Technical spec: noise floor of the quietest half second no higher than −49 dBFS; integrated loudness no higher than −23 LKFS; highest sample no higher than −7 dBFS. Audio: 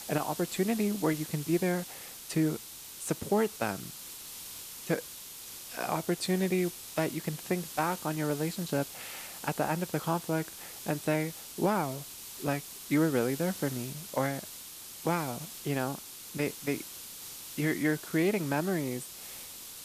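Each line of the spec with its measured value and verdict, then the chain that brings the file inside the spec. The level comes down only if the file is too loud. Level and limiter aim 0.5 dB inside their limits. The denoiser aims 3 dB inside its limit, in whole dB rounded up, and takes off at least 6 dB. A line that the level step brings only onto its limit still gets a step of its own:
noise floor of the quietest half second −46 dBFS: out of spec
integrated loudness −32.5 LKFS: in spec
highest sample −14.5 dBFS: in spec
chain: broadband denoise 6 dB, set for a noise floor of −46 dBFS

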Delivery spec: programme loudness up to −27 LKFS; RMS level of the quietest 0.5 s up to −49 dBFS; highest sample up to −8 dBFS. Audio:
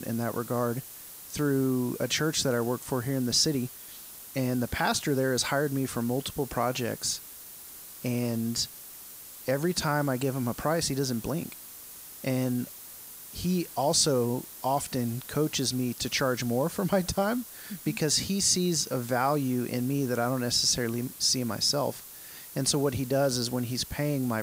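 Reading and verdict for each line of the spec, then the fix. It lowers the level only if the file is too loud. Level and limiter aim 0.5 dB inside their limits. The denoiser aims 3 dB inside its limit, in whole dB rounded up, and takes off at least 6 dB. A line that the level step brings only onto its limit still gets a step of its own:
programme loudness −28.0 LKFS: in spec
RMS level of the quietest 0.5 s −45 dBFS: out of spec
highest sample −12.0 dBFS: in spec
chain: broadband denoise 7 dB, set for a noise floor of −45 dBFS

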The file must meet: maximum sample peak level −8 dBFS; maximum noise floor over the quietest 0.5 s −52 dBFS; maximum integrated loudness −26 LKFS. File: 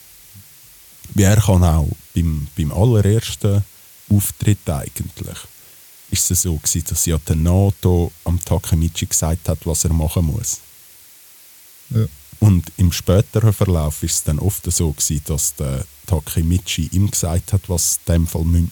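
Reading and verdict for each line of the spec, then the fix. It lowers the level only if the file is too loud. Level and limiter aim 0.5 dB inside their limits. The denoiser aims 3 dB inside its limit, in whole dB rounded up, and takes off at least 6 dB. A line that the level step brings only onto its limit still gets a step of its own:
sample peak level −1.5 dBFS: out of spec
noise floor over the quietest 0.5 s −44 dBFS: out of spec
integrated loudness −18.0 LKFS: out of spec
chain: level −8.5 dB

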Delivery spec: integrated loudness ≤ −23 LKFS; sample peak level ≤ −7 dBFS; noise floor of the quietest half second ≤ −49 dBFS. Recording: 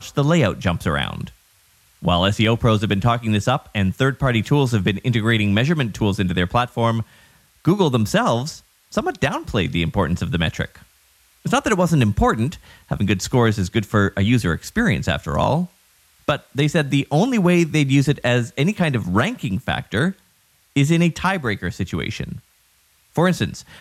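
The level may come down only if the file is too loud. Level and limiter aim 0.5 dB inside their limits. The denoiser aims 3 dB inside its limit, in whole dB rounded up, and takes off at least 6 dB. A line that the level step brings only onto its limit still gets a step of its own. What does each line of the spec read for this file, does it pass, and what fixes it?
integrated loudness −20.0 LKFS: out of spec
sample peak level −5.5 dBFS: out of spec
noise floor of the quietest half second −59 dBFS: in spec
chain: level −3.5 dB

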